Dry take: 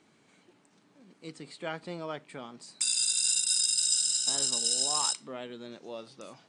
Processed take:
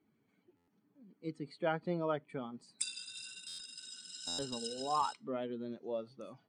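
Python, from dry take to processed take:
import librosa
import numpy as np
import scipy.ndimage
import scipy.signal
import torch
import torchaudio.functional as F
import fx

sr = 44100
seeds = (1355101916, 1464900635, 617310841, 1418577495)

y = fx.bin_expand(x, sr, power=1.5)
y = fx.env_lowpass_down(y, sr, base_hz=2100.0, full_db=-26.0)
y = fx.band_shelf(y, sr, hz=3600.0, db=-8.0, octaves=2.5)
y = fx.buffer_glitch(y, sr, at_s=(0.56, 3.47, 4.27), block=512, repeats=9)
y = y * librosa.db_to_amplitude(5.0)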